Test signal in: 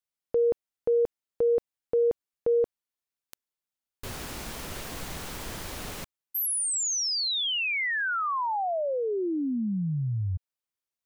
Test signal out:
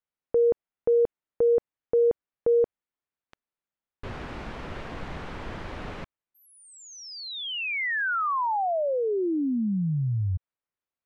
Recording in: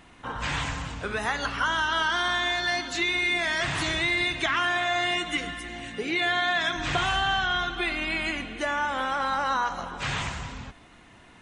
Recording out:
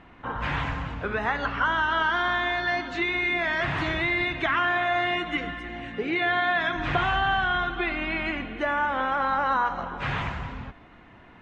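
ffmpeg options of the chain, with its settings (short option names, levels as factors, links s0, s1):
-af "lowpass=2200,volume=1.33"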